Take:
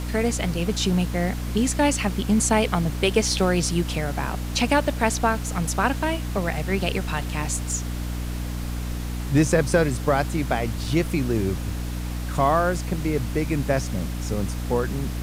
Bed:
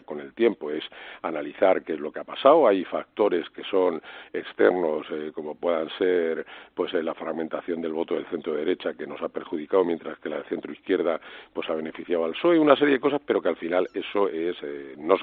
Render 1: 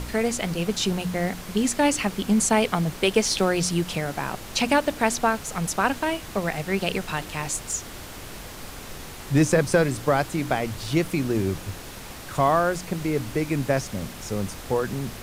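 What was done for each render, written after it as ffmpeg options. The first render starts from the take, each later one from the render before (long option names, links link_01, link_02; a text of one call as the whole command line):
ffmpeg -i in.wav -af "bandreject=frequency=60:width_type=h:width=4,bandreject=frequency=120:width_type=h:width=4,bandreject=frequency=180:width_type=h:width=4,bandreject=frequency=240:width_type=h:width=4,bandreject=frequency=300:width_type=h:width=4" out.wav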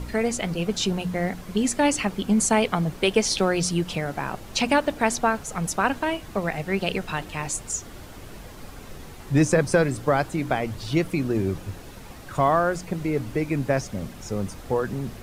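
ffmpeg -i in.wav -af "afftdn=noise_reduction=8:noise_floor=-39" out.wav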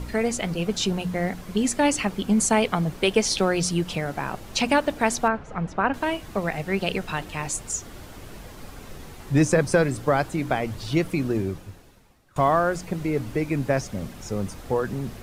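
ffmpeg -i in.wav -filter_complex "[0:a]asettb=1/sr,asplit=3[link_01][link_02][link_03];[link_01]atrim=end=5.284[link_04];[link_02]atrim=start=5.28:end=5.94,asetpts=PTS-STARTPTS,afade=type=in:duration=0.004:curve=qsin,afade=type=out:start_time=0.656:duration=0.004:curve=qsin,lowpass=2100[link_05];[link_03]atrim=start=5.936[link_06];[link_04][link_05]acrossfade=duration=0.004:curve1=hsin:curve2=qsin[link_07];[link_07][link_06]acrossfade=duration=0.004:curve1=qsin:curve2=hsin,asplit=2[link_08][link_09];[link_08]atrim=end=12.36,asetpts=PTS-STARTPTS,afade=type=out:start_time=11.31:duration=1.05:curve=qua:silence=0.0841395[link_10];[link_09]atrim=start=12.36,asetpts=PTS-STARTPTS,afade=type=in:duration=0.004:curve=hsin:silence=0.0841395[link_11];[link_10][link_11]concat=n=2:v=0:a=1" out.wav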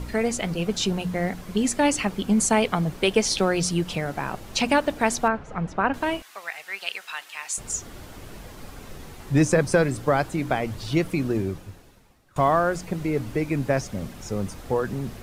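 ffmpeg -i in.wav -filter_complex "[0:a]asettb=1/sr,asplit=3[link_01][link_02][link_03];[link_01]atrim=end=6.224[link_04];[link_02]atrim=start=6.22:end=7.58,asetpts=PTS-STARTPTS,afade=type=in:duration=0.004:curve=qsin,afade=type=out:start_time=1.356:duration=0.004:curve=qsin,highpass=1400[link_05];[link_03]atrim=start=7.576[link_06];[link_04][link_05]acrossfade=duration=0.004:curve1=hsin:curve2=qsin[link_07];[link_07][link_06]acrossfade=duration=0.004:curve1=qsin:curve2=hsin" out.wav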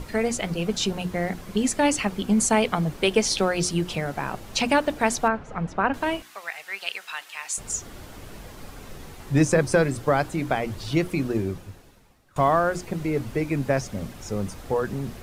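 ffmpeg -i in.wav -af "bandreject=frequency=60:width_type=h:width=6,bandreject=frequency=120:width_type=h:width=6,bandreject=frequency=180:width_type=h:width=6,bandreject=frequency=240:width_type=h:width=6,bandreject=frequency=300:width_type=h:width=6,bandreject=frequency=360:width_type=h:width=6" out.wav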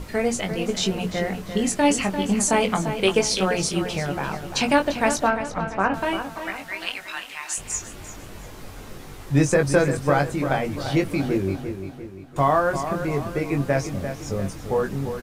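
ffmpeg -i in.wav -filter_complex "[0:a]asplit=2[link_01][link_02];[link_02]adelay=21,volume=-6dB[link_03];[link_01][link_03]amix=inputs=2:normalize=0,asplit=2[link_04][link_05];[link_05]adelay=345,lowpass=frequency=4300:poles=1,volume=-9dB,asplit=2[link_06][link_07];[link_07]adelay=345,lowpass=frequency=4300:poles=1,volume=0.48,asplit=2[link_08][link_09];[link_09]adelay=345,lowpass=frequency=4300:poles=1,volume=0.48,asplit=2[link_10][link_11];[link_11]adelay=345,lowpass=frequency=4300:poles=1,volume=0.48,asplit=2[link_12][link_13];[link_13]adelay=345,lowpass=frequency=4300:poles=1,volume=0.48[link_14];[link_04][link_06][link_08][link_10][link_12][link_14]amix=inputs=6:normalize=0" out.wav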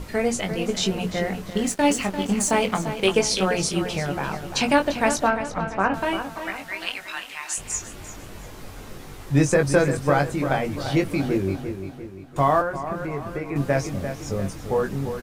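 ffmpeg -i in.wav -filter_complex "[0:a]asettb=1/sr,asplit=3[link_01][link_02][link_03];[link_01]atrim=end=1.504[link_04];[link_02]atrim=start=1.5:end=3.07,asetpts=PTS-STARTPTS,afade=type=in:duration=0.004:curve=qsin,afade=type=out:start_time=1.566:duration=0.004:curve=qsin,aeval=exprs='sgn(val(0))*max(abs(val(0))-0.015,0)':channel_layout=same[link_05];[link_03]atrim=start=3.066[link_06];[link_04][link_05]acrossfade=duration=0.004:curve1=hsin:curve2=qsin[link_07];[link_07][link_06]acrossfade=duration=0.004:curve1=qsin:curve2=hsin,asettb=1/sr,asplit=3[link_08][link_09][link_10];[link_08]atrim=end=12.614[link_11];[link_09]atrim=start=12.61:end=13.56,asetpts=PTS-STARTPTS,afade=type=in:duration=0.004:curve=qsin,afade=type=out:start_time=0.946:duration=0.004:curve=qsin,acrossover=split=800|2100[link_12][link_13][link_14];[link_12]acompressor=threshold=-28dB:ratio=4[link_15];[link_13]acompressor=threshold=-30dB:ratio=4[link_16];[link_14]acompressor=threshold=-53dB:ratio=4[link_17];[link_15][link_16][link_17]amix=inputs=3:normalize=0[link_18];[link_10]atrim=start=13.556[link_19];[link_11][link_18]acrossfade=duration=0.004:curve1=hsin:curve2=qsin[link_20];[link_20][link_19]acrossfade=duration=0.004:curve1=qsin:curve2=hsin" out.wav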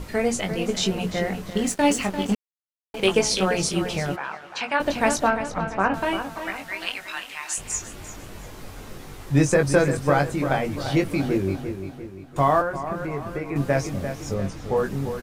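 ffmpeg -i in.wav -filter_complex "[0:a]asplit=3[link_01][link_02][link_03];[link_01]afade=type=out:start_time=4.15:duration=0.02[link_04];[link_02]bandpass=frequency=1500:width_type=q:width=0.98,afade=type=in:start_time=4.15:duration=0.02,afade=type=out:start_time=4.79:duration=0.02[link_05];[link_03]afade=type=in:start_time=4.79:duration=0.02[link_06];[link_04][link_05][link_06]amix=inputs=3:normalize=0,asettb=1/sr,asplit=3[link_07][link_08][link_09];[link_07]atrim=end=14.344[link_10];[link_08]atrim=start=14.34:end=14.77,asetpts=PTS-STARTPTS,afade=type=in:duration=0.004:curve=qsin,afade=type=out:start_time=0.426:duration=0.004:curve=qsin,acrossover=split=6900[link_11][link_12];[link_12]acompressor=threshold=-59dB:ratio=4:attack=1:release=60[link_13];[link_11][link_13]amix=inputs=2:normalize=0[link_14];[link_09]atrim=start=14.766[link_15];[link_10][link_14]acrossfade=duration=0.004:curve1=hsin:curve2=qsin[link_16];[link_16][link_15]acrossfade=duration=0.004:curve1=qsin:curve2=hsin,asplit=3[link_17][link_18][link_19];[link_17]atrim=end=2.35,asetpts=PTS-STARTPTS,afade=type=out:start_time=2.346:duration=0.004:curve=hsin[link_20];[link_18]atrim=start=2.35:end=2.94,asetpts=PTS-STARTPTS,volume=0[link_21];[link_19]atrim=start=2.94,asetpts=PTS-STARTPTS,afade=type=in:duration=0.004:curve=hsin[link_22];[link_20][link_21][link_22]concat=n=3:v=0:a=1" out.wav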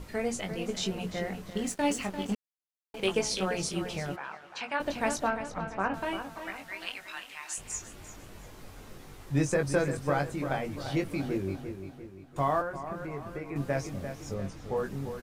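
ffmpeg -i in.wav -af "volume=-8.5dB" out.wav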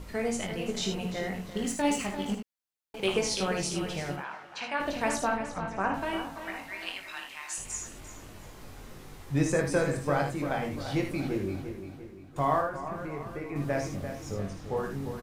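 ffmpeg -i in.wav -af "aecho=1:1:55|77:0.398|0.398" out.wav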